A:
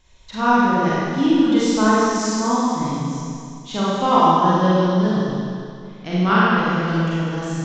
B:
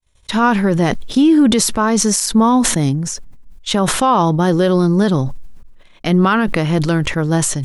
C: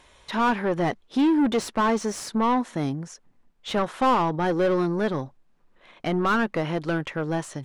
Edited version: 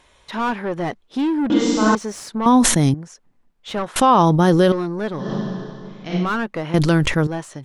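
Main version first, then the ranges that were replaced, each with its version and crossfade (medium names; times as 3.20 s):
C
1.50–1.95 s: from A
2.46–2.94 s: from B
3.96–4.72 s: from B
5.24–6.24 s: from A, crossfade 0.16 s
6.74–7.27 s: from B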